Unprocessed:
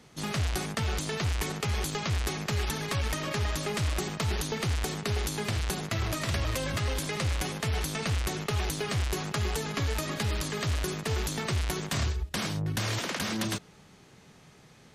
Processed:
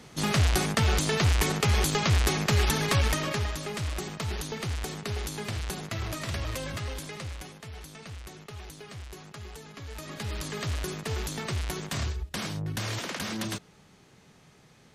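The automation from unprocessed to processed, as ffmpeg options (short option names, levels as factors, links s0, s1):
-af "volume=7.08,afade=t=out:st=2.97:d=0.58:silence=0.354813,afade=t=out:st=6.58:d=1:silence=0.316228,afade=t=in:st=9.83:d=0.71:silence=0.281838"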